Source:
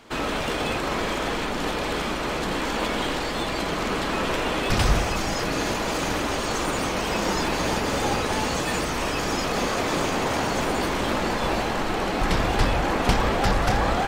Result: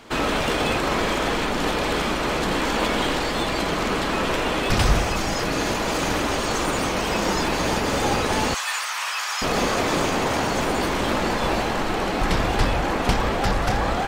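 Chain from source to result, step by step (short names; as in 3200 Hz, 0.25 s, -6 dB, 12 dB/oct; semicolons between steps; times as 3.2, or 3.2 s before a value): 8.54–9.42 HPF 990 Hz 24 dB/oct; vocal rider 2 s; gain +2 dB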